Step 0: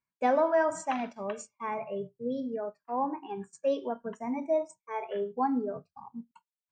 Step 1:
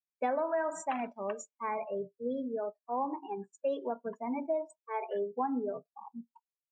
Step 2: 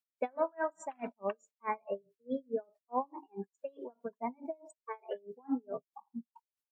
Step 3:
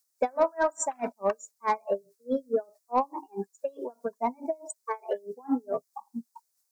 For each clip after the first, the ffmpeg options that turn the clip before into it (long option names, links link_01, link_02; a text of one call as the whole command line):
ffmpeg -i in.wav -af "highpass=230,afftdn=noise_reduction=24:noise_floor=-44,acompressor=threshold=-28dB:ratio=6" out.wav
ffmpeg -i in.wav -af "aeval=exprs='val(0)*pow(10,-36*(0.5-0.5*cos(2*PI*4.7*n/s))/20)':channel_layout=same,volume=4dB" out.wav
ffmpeg -i in.wav -filter_complex "[0:a]asplit=2[link_01][link_02];[link_02]highpass=frequency=720:poles=1,volume=10dB,asoftclip=type=tanh:threshold=-19dB[link_03];[link_01][link_03]amix=inputs=2:normalize=0,lowpass=frequency=1100:poles=1,volume=-6dB,aexciter=amount=11.7:drive=6.1:freq=4600,volume=8dB" out.wav